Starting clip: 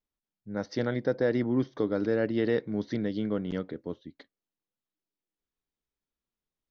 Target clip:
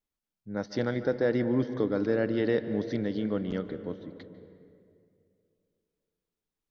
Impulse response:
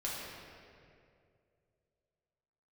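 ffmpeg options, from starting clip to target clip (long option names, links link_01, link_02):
-filter_complex "[0:a]asplit=2[link_01][link_02];[1:a]atrim=start_sample=2205,highshelf=frequency=4100:gain=-9,adelay=145[link_03];[link_02][link_03]afir=irnorm=-1:irlink=0,volume=-13.5dB[link_04];[link_01][link_04]amix=inputs=2:normalize=0"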